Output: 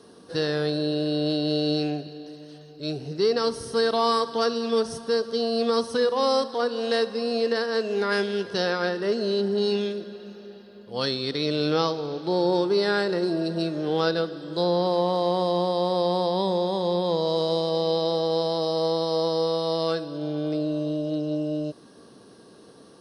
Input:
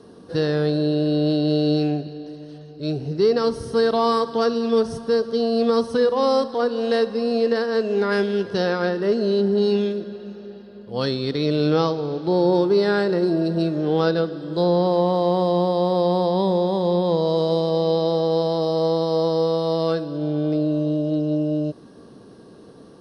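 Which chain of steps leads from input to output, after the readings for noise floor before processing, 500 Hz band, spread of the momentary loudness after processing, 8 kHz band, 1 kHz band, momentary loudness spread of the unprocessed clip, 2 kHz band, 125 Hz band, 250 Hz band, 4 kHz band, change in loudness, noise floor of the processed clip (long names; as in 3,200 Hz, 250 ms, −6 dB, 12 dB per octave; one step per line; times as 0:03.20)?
−45 dBFS, −4.0 dB, 8 LU, can't be measured, −2.5 dB, 7 LU, −0.5 dB, −7.5 dB, −6.0 dB, +2.0 dB, −4.0 dB, −50 dBFS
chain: spectral tilt +2 dB per octave
level −2 dB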